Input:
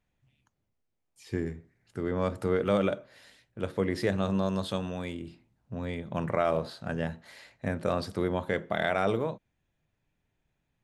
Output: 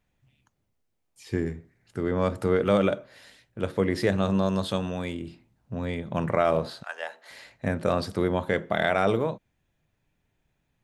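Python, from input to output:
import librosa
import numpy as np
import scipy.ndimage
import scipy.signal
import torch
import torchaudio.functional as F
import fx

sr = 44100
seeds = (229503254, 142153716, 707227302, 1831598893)

y = fx.highpass(x, sr, hz=fx.line((6.82, 970.0), (7.29, 370.0)), slope=24, at=(6.82, 7.29), fade=0.02)
y = y * librosa.db_to_amplitude(4.0)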